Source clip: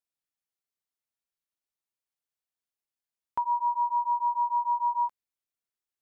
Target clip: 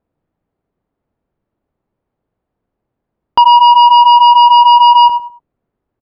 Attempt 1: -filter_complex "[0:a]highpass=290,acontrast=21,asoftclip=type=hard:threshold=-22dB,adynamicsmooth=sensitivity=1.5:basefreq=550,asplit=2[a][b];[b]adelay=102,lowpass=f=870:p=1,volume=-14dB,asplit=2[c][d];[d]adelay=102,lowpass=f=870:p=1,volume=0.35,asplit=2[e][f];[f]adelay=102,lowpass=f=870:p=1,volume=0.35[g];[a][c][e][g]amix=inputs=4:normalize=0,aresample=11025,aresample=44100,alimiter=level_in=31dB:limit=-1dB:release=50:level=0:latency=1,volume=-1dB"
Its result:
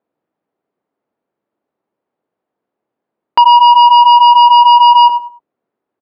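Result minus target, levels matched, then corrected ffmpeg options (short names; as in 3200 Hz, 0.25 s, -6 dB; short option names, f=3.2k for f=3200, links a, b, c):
250 Hz band -5.0 dB
-filter_complex "[0:a]acontrast=21,asoftclip=type=hard:threshold=-22dB,adynamicsmooth=sensitivity=1.5:basefreq=550,asplit=2[a][b];[b]adelay=102,lowpass=f=870:p=1,volume=-14dB,asplit=2[c][d];[d]adelay=102,lowpass=f=870:p=1,volume=0.35,asplit=2[e][f];[f]adelay=102,lowpass=f=870:p=1,volume=0.35[g];[a][c][e][g]amix=inputs=4:normalize=0,aresample=11025,aresample=44100,alimiter=level_in=31dB:limit=-1dB:release=50:level=0:latency=1,volume=-1dB"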